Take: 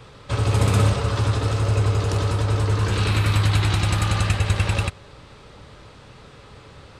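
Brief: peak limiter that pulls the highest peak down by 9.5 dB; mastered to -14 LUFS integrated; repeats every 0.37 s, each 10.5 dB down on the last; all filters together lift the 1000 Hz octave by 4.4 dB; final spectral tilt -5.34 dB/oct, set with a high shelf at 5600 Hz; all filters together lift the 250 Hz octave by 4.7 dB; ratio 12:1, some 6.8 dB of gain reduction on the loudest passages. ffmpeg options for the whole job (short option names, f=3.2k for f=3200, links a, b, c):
-af "equalizer=f=250:t=o:g=6.5,equalizer=f=1k:t=o:g=5,highshelf=f=5.6k:g=6.5,acompressor=threshold=-19dB:ratio=12,alimiter=limit=-18.5dB:level=0:latency=1,aecho=1:1:370|740|1110:0.299|0.0896|0.0269,volume=13.5dB"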